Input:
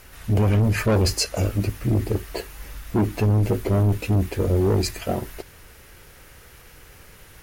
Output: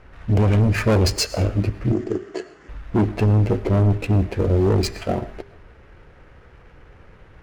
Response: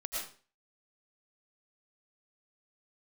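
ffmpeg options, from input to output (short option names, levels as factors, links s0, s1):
-filter_complex "[0:a]adynamicsmooth=sensitivity=6:basefreq=1500,asettb=1/sr,asplit=3[s0][s1][s2];[s0]atrim=end=1.924[s3];[s1]atrim=start=1.92:end=2.69,asetpts=PTS-STARTPTS,afade=t=in:d=0.004:c=qsin,afade=t=out:st=0.766:d=0.004:c=qsin,highpass=220,equalizer=f=360:t=q:w=4:g=6,equalizer=f=530:t=q:w=4:g=-8,equalizer=f=890:t=q:w=4:g=-9,equalizer=f=2400:t=q:w=4:g=-7,equalizer=f=3900:t=q:w=4:g=-8,equalizer=f=7100:t=q:w=4:g=7,lowpass=f=7800:w=0.5412,lowpass=f=7800:w=1.3066[s4];[s2]atrim=start=2.686[s5];[s3][s4]acrossfade=d=0.004:c1=hsin:c2=qsin[s6];[s6][s5]acrossfade=d=0.004:c1=qsin:c2=hsin,bandreject=f=399:t=h:w=4,bandreject=f=798:t=h:w=4,bandreject=f=1197:t=h:w=4,bandreject=f=1596:t=h:w=4,bandreject=f=1995:t=h:w=4,bandreject=f=2394:t=h:w=4,bandreject=f=2793:t=h:w=4,bandreject=f=3192:t=h:w=4,bandreject=f=3591:t=h:w=4,bandreject=f=3990:t=h:w=4,bandreject=f=4389:t=h:w=4,bandreject=f=4788:t=h:w=4,bandreject=f=5187:t=h:w=4,bandreject=f=5586:t=h:w=4,bandreject=f=5985:t=h:w=4,bandreject=f=6384:t=h:w=4,bandreject=f=6783:t=h:w=4,bandreject=f=7182:t=h:w=4,bandreject=f=7581:t=h:w=4,bandreject=f=7980:t=h:w=4,bandreject=f=8379:t=h:w=4,bandreject=f=8778:t=h:w=4,bandreject=f=9177:t=h:w=4,bandreject=f=9576:t=h:w=4,bandreject=f=9975:t=h:w=4,bandreject=f=10374:t=h:w=4,bandreject=f=10773:t=h:w=4,bandreject=f=11172:t=h:w=4,bandreject=f=11571:t=h:w=4,bandreject=f=11970:t=h:w=4,bandreject=f=12369:t=h:w=4,bandreject=f=12768:t=h:w=4,bandreject=f=13167:t=h:w=4,asplit=2[s7][s8];[1:a]atrim=start_sample=2205[s9];[s8][s9]afir=irnorm=-1:irlink=0,volume=0.133[s10];[s7][s10]amix=inputs=2:normalize=0,volume=1.19"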